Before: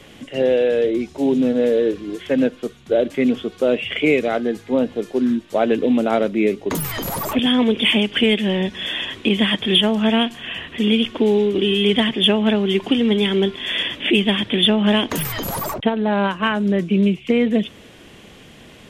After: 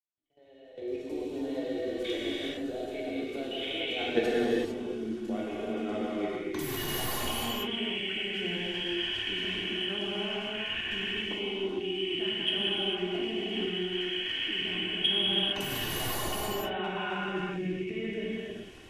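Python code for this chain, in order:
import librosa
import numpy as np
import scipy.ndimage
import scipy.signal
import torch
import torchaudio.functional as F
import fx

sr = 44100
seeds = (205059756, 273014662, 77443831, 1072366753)

y = fx.fade_in_head(x, sr, length_s=2.58)
y = fx.doppler_pass(y, sr, speed_mps=25, closest_m=3.9, pass_at_s=4.18)
y = fx.recorder_agc(y, sr, target_db=-20.0, rise_db_per_s=24.0, max_gain_db=30)
y = fx.low_shelf(y, sr, hz=85.0, db=3.5)
y = y + 0.44 * np.pad(y, (int(2.7 * sr / 1000.0), 0))[:len(y)]
y = fx.dynamic_eq(y, sr, hz=3300.0, q=0.85, threshold_db=-45.0, ratio=4.0, max_db=8)
y = fx.level_steps(y, sr, step_db=18)
y = fx.rev_gated(y, sr, seeds[0], gate_ms=480, shape='flat', drr_db=-7.0)
y = y * 10.0 ** (-4.0 / 20.0)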